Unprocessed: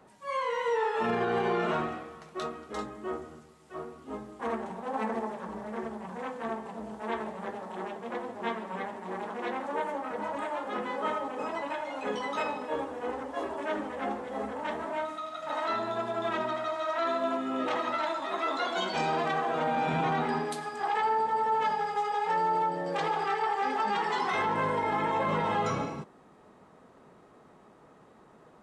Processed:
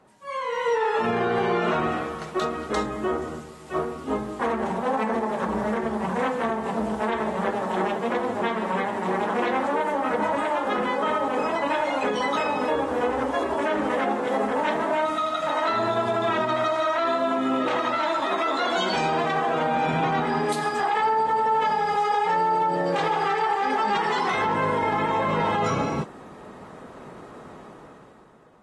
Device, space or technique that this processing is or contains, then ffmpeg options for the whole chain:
low-bitrate web radio: -filter_complex "[0:a]asettb=1/sr,asplit=3[a][b][c];[a]atrim=end=13.884[d];[b]atrim=start=13.88:end=15.08,asetpts=PTS-STARTPTS,afade=t=in:d=0.004:c=qsin,afade=t=out:st=1.196:d=0.004:c=qsin,highpass=150[e];[c]atrim=start=15.076[f];[d][e]acrossfade=d=0.004:c1=hsin:c2=qsin[g];[g][f]acrossfade=d=0.004:c1=qsin:c2=hsin,dynaudnorm=f=100:g=17:m=13.5dB,alimiter=limit=-15.5dB:level=0:latency=1:release=168" -ar 32000 -c:a aac -b:a 32k

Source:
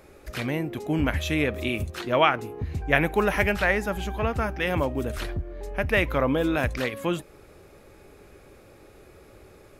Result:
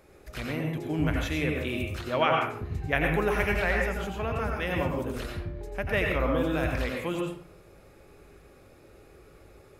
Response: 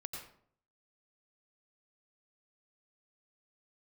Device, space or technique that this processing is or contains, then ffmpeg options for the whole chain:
bathroom: -filter_complex "[1:a]atrim=start_sample=2205[a];[0:a][a]afir=irnorm=-1:irlink=0,volume=-1.5dB"

